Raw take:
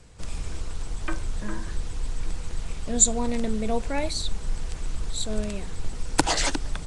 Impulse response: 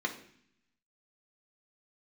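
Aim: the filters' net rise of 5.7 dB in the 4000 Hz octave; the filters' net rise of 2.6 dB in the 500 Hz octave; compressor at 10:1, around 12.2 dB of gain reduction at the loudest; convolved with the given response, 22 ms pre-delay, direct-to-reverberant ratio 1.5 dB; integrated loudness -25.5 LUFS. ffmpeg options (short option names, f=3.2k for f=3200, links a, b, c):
-filter_complex "[0:a]equalizer=f=500:t=o:g=3,equalizer=f=4k:t=o:g=6.5,acompressor=threshold=-24dB:ratio=10,asplit=2[a][b];[1:a]atrim=start_sample=2205,adelay=22[c];[b][c]afir=irnorm=-1:irlink=0,volume=-7.5dB[d];[a][d]amix=inputs=2:normalize=0,volume=6dB"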